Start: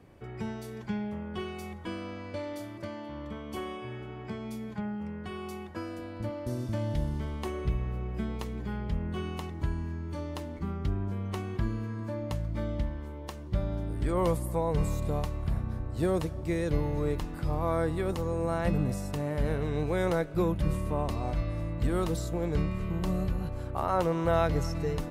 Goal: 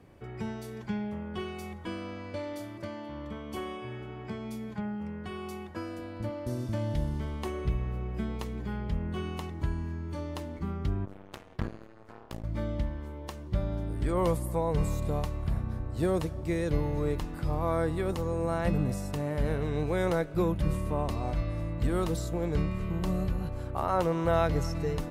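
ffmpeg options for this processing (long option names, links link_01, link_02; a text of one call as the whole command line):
ffmpeg -i in.wav -filter_complex "[0:a]asettb=1/sr,asplit=3[link_01][link_02][link_03];[link_01]atrim=end=11.054[link_04];[link_02]atrim=start=11.05:end=12.44,asetpts=PTS-STARTPTS,afade=type=in:duration=0.004:curve=qsin,afade=type=out:start_time=1.386:duration=0.004:curve=qsin,aeval=exprs='0.141*(cos(1*acos(clip(val(0)/0.141,-1,1)))-cos(1*PI/2))+0.0316*(cos(3*acos(clip(val(0)/0.141,-1,1)))-cos(3*PI/2))+0.01*(cos(7*acos(clip(val(0)/0.141,-1,1)))-cos(7*PI/2))+0.00224*(cos(8*acos(clip(val(0)/0.141,-1,1)))-cos(8*PI/2))':channel_layout=same[link_05];[link_03]atrim=start=12.436[link_06];[link_04][link_05]acrossfade=duration=0.004:curve1=hsin:curve2=qsin[link_07];[link_07][link_06]acrossfade=duration=0.004:curve1=qsin:curve2=hsin" out.wav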